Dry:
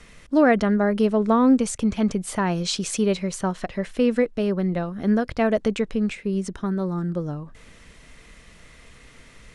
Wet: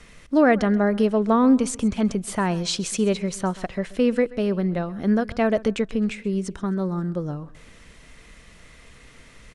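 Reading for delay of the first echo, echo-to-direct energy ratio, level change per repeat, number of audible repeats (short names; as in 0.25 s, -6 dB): 0.131 s, -19.5 dB, -9.5 dB, 2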